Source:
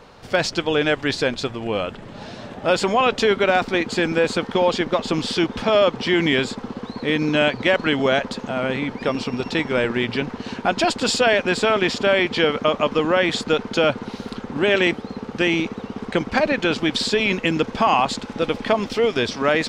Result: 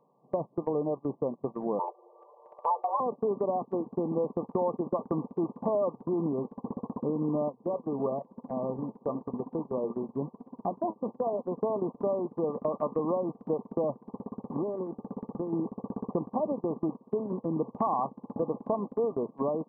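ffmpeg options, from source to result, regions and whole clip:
ffmpeg -i in.wav -filter_complex "[0:a]asettb=1/sr,asplit=3[link_01][link_02][link_03];[link_01]atrim=end=1.794[link_04];[link_02]atrim=start=1.79:end=3,asetpts=PTS-STARTPTS,afade=type=in:duration=0.004:curve=qsin,afade=type=out:start_time=1.206:duration=0.004:curve=qsin,aecho=1:1:7.4:0.53,atrim=end_sample=53361,afreqshift=340[link_05];[link_03]atrim=start=2.996[link_06];[link_04][link_05]acrossfade=duration=0.004:curve1=hsin:curve2=qsin[link_07];[link_07][link_06]acrossfade=duration=0.004:curve1=qsin:curve2=hsin,asettb=1/sr,asplit=3[link_08][link_09][link_10];[link_08]atrim=end=7.494[link_11];[link_09]atrim=start=7.49:end=11.59,asetpts=PTS-STARTPTS,afade=type=in:duration=0.004:curve=qsin,afade=type=out:start_time=4.096:duration=0.004:curve=qsin,lowpass=2500,flanger=delay=3.8:depth=5.8:regen=70:speed=1:shape=sinusoidal[link_12];[link_10]atrim=start=11.586[link_13];[link_11][link_12]acrossfade=duration=0.004:curve1=hsin:curve2=qsin[link_14];[link_14][link_13]acrossfade=duration=0.004:curve1=qsin:curve2=hsin,asettb=1/sr,asplit=3[link_15][link_16][link_17];[link_15]atrim=end=14.064[link_18];[link_16]atrim=start=14.06:end=15.53,asetpts=PTS-STARTPTS,afade=type=in:duration=0.004:curve=qsin,afade=type=out:start_time=1.466:duration=0.004:curve=qsin,acompressor=threshold=-23dB:ratio=6:attack=3.2:release=140:knee=1:detection=peak,aeval=exprs='0.106*(abs(mod(val(0)/0.106+3,4)-2)-1)':channel_layout=same[link_19];[link_17]atrim=start=15.526[link_20];[link_18][link_19]acrossfade=duration=0.004:curve1=hsin:curve2=qsin[link_21];[link_21][link_20]acrossfade=duration=0.004:curve1=qsin:curve2=hsin,acompressor=threshold=-26dB:ratio=3,afftfilt=real='re*between(b*sr/4096,120,1200)':imag='im*between(b*sr/4096,120,1200)':win_size=4096:overlap=0.75,agate=range=-19dB:threshold=-31dB:ratio=16:detection=peak,volume=-1.5dB" out.wav

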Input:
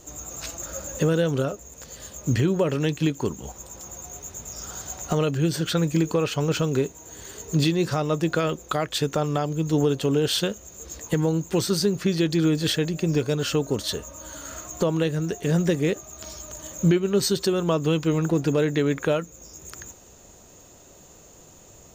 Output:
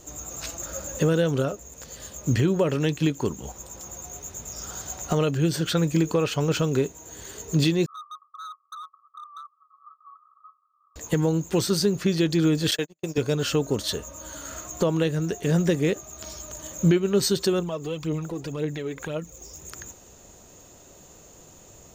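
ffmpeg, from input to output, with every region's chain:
ffmpeg -i in.wav -filter_complex "[0:a]asettb=1/sr,asplit=3[link_01][link_02][link_03];[link_01]atrim=end=7.864[link_04];[link_02]atrim=start=7.86:end=10.96,asetpts=PTS-STARTPTS,afade=type=in:duration=0.004:curve=qsin,afade=type=out:start_time=3.096:duration=0.004:curve=qsin,asuperpass=centerf=1200:order=20:qfactor=5.9,asoftclip=type=hard:threshold=-36dB[link_05];[link_03]atrim=start=10.956[link_06];[link_04][link_05]acrossfade=duration=0.004:curve1=hsin:curve2=qsin[link_07];[link_07][link_06]acrossfade=duration=0.004:curve1=qsin:curve2=hsin,asettb=1/sr,asplit=3[link_08][link_09][link_10];[link_08]atrim=end=12.714[link_11];[link_09]atrim=start=12.71:end=13.18,asetpts=PTS-STARTPTS,afade=type=in:duration=0.004:curve=qsin,afade=type=out:start_time=0.466:duration=0.004:curve=qsin,highpass=frequency=390:poles=1,agate=range=-49dB:threshold=-29dB:ratio=16:release=100:detection=peak,highshelf=frequency=4300:gain=5[link_12];[link_10]atrim=start=13.176[link_13];[link_11][link_12]acrossfade=duration=0.004:curve1=hsin:curve2=qsin[link_14];[link_14][link_13]acrossfade=duration=0.004:curve1=qsin:curve2=hsin,asettb=1/sr,asplit=3[link_15][link_16][link_17];[link_15]atrim=end=17.594[link_18];[link_16]atrim=start=17.59:end=19.61,asetpts=PTS-STARTPTS,afade=type=in:duration=0.004:curve=qsin,afade=type=out:start_time=2.016:duration=0.004:curve=qsin,equalizer=frequency=1500:width=3.8:gain=-5,acompressor=threshold=-35dB:ratio=2:attack=3.2:release=140:knee=1:detection=peak,aphaser=in_gain=1:out_gain=1:delay=2.8:decay=0.53:speed=1.9:type=triangular[link_19];[link_17]atrim=start=19.606[link_20];[link_18][link_19]acrossfade=duration=0.004:curve1=hsin:curve2=qsin[link_21];[link_21][link_20]acrossfade=duration=0.004:curve1=qsin:curve2=hsin" out.wav

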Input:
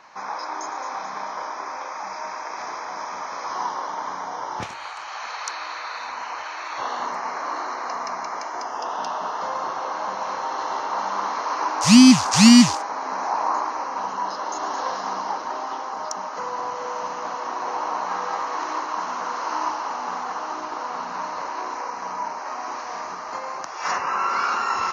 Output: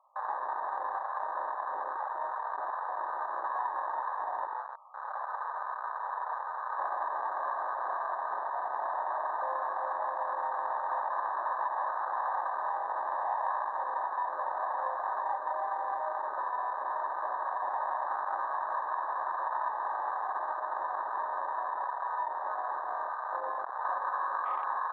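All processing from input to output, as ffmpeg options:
ffmpeg -i in.wav -filter_complex "[0:a]asettb=1/sr,asplit=3[link_01][link_02][link_03];[link_01]atrim=end=4.464[link_04];[link_02]atrim=start=4.46:end=5.01,asetpts=PTS-STARTPTS,afade=type=in:duration=0.004:curve=qsin,afade=type=out:start_time=0.546:duration=0.004:curve=qsin,highpass=730,lowpass=6500,aeval=exprs='clip(val(0),-1,0.0178)':channel_layout=same[link_05];[link_03]atrim=start=5.006[link_06];[link_04][link_05]acrossfade=duration=0.004:curve1=hsin:curve2=qsin[link_07];[link_07][link_06]acrossfade=duration=0.004:curve1=qsin:curve2=hsin,asettb=1/sr,asplit=3[link_08][link_09][link_10];[link_08]atrim=end=15.214[link_11];[link_09]atrim=start=15.21:end=16.18,asetpts=PTS-STARTPTS,afade=type=in:duration=0.004:curve=qsin,afade=type=out:start_time=0.966:duration=0.004:curve=qsin,highpass=290,aecho=1:1:5.1:0.63,atrim=end_sample=42777[link_12];[link_10]atrim=start=16.176[link_13];[link_11][link_12]acrossfade=duration=0.004:curve1=hsin:curve2=qsin[link_14];[link_14][link_13]acrossfade=duration=0.004:curve1=qsin:curve2=hsin,afftfilt=real='re*between(b*sr/4096,510,1300)':imag='im*between(b*sr/4096,510,1300)':win_size=4096:overlap=0.75,afwtdn=0.0355,acompressor=threshold=-31dB:ratio=3" out.wav

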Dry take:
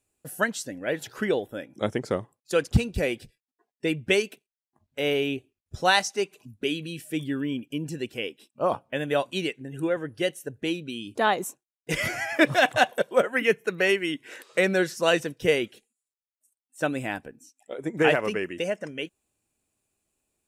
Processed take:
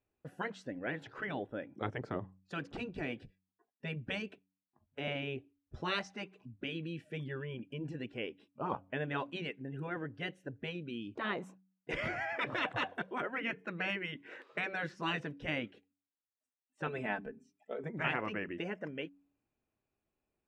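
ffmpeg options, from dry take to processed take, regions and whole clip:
ffmpeg -i in.wav -filter_complex "[0:a]asettb=1/sr,asplit=3[link_01][link_02][link_03];[link_01]atrim=end=2.014[link_04];[link_02]atrim=start=2.01:end=5.08,asetpts=PTS-STARTPTS,afade=type=in:duration=0.004:curve=qsin,afade=type=out:start_time=3.066:duration=0.004:curve=qsin,bandreject=frequency=2100:width=17,acrossover=split=430|3000[link_05][link_06][link_07];[link_06]acompressor=threshold=-29dB:ratio=2:attack=3.2:release=140:knee=2.83:detection=peak[link_08];[link_05][link_08][link_07]amix=inputs=3:normalize=0[link_09];[link_03]atrim=start=5.076[link_10];[link_04][link_09]acrossfade=duration=0.004:curve1=hsin:curve2=qsin[link_11];[link_11][link_10]acrossfade=duration=0.004:curve1=qsin:curve2=hsin,asettb=1/sr,asplit=3[link_12][link_13][link_14];[link_12]atrim=end=16.874[link_15];[link_13]atrim=start=16.87:end=17.84,asetpts=PTS-STARTPTS,afade=type=in:duration=0.004:curve=qsin,afade=type=out:start_time=0.966:duration=0.004:curve=qsin,bandreject=frequency=50:width_type=h:width=6,bandreject=frequency=100:width_type=h:width=6,bandreject=frequency=150:width_type=h:width=6,bandreject=frequency=200:width_type=h:width=6,bandreject=frequency=250:width_type=h:width=6,bandreject=frequency=300:width_type=h:width=6,bandreject=frequency=350:width_type=h:width=6,bandreject=frequency=400:width_type=h:width=6,aecho=1:1:4.6:0.75,atrim=end_sample=42777[link_16];[link_14]atrim=start=17.836[link_17];[link_15][link_16]acrossfade=duration=0.004:curve1=hsin:curve2=qsin[link_18];[link_18][link_17]acrossfade=duration=0.004:curve1=qsin:curve2=hsin,lowpass=2100,afftfilt=real='re*lt(hypot(re,im),0.251)':imag='im*lt(hypot(re,im),0.251)':win_size=1024:overlap=0.75,bandreject=frequency=94.26:width_type=h:width=4,bandreject=frequency=188.52:width_type=h:width=4,bandreject=frequency=282.78:width_type=h:width=4,volume=-4.5dB" out.wav

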